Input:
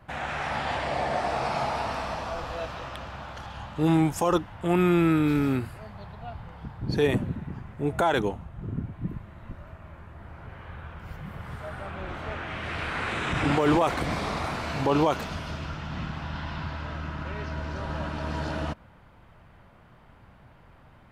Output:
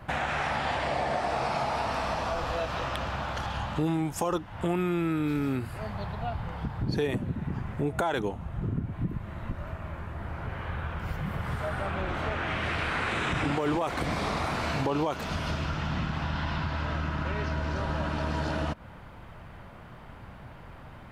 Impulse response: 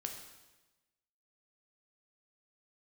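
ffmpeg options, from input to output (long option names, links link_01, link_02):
-af "acompressor=threshold=-35dB:ratio=4,volume=7.5dB"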